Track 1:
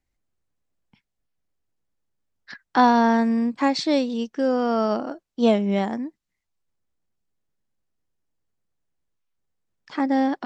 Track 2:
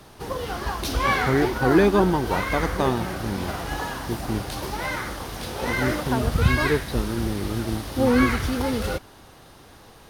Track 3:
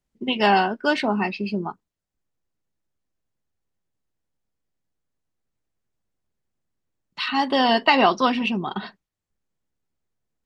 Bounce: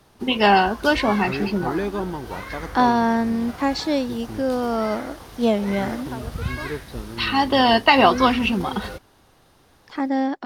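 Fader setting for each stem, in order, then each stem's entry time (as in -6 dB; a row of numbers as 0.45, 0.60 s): -1.0, -8.0, +2.5 dB; 0.00, 0.00, 0.00 s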